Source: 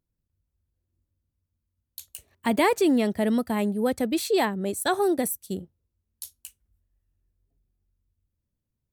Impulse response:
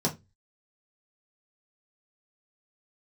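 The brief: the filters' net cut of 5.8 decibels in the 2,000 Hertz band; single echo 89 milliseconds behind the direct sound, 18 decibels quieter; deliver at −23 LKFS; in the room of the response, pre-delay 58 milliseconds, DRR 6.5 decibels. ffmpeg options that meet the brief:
-filter_complex "[0:a]equalizer=frequency=2000:width_type=o:gain=-7,aecho=1:1:89:0.126,asplit=2[link_01][link_02];[1:a]atrim=start_sample=2205,adelay=58[link_03];[link_02][link_03]afir=irnorm=-1:irlink=0,volume=-15dB[link_04];[link_01][link_04]amix=inputs=2:normalize=0,volume=-1.5dB"

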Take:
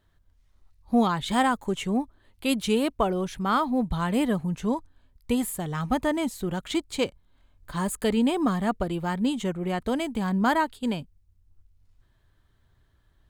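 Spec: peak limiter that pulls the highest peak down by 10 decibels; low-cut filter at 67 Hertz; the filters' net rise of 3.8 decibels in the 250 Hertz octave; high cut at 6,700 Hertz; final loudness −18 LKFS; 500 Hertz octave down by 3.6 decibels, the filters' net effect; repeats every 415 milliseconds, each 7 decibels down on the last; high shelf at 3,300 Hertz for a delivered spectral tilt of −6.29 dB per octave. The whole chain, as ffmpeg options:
ffmpeg -i in.wav -af "highpass=67,lowpass=6700,equalizer=frequency=250:width_type=o:gain=6,equalizer=frequency=500:width_type=o:gain=-6.5,highshelf=frequency=3300:gain=-7,alimiter=limit=-19dB:level=0:latency=1,aecho=1:1:415|830|1245|1660|2075:0.447|0.201|0.0905|0.0407|0.0183,volume=9.5dB" out.wav

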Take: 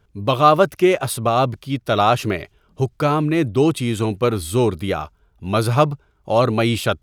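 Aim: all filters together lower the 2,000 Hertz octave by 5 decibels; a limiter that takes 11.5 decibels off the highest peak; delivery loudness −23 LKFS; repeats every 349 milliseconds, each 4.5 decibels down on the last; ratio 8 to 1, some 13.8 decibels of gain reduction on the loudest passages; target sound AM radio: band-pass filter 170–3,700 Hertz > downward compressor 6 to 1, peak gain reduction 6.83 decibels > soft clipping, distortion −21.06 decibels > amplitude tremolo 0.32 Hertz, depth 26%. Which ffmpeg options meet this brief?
ffmpeg -i in.wav -af "equalizer=frequency=2000:width_type=o:gain=-6.5,acompressor=threshold=-24dB:ratio=8,alimiter=level_in=2dB:limit=-24dB:level=0:latency=1,volume=-2dB,highpass=170,lowpass=3700,aecho=1:1:349|698|1047|1396|1745|2094|2443|2792|3141:0.596|0.357|0.214|0.129|0.0772|0.0463|0.0278|0.0167|0.01,acompressor=threshold=-34dB:ratio=6,asoftclip=threshold=-29.5dB,tremolo=f=0.32:d=0.26,volume=18dB" out.wav

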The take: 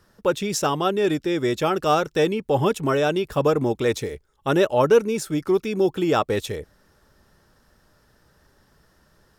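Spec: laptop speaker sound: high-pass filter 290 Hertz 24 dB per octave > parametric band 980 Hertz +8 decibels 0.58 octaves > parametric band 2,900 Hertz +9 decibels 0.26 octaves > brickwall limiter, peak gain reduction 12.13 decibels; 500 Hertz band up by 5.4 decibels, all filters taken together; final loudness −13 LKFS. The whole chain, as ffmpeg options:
ffmpeg -i in.wav -af "highpass=frequency=290:width=0.5412,highpass=frequency=290:width=1.3066,equalizer=frequency=500:width_type=o:gain=6,equalizer=frequency=980:width_type=o:width=0.58:gain=8,equalizer=frequency=2900:width_type=o:width=0.26:gain=9,volume=9.5dB,alimiter=limit=-3dB:level=0:latency=1" out.wav

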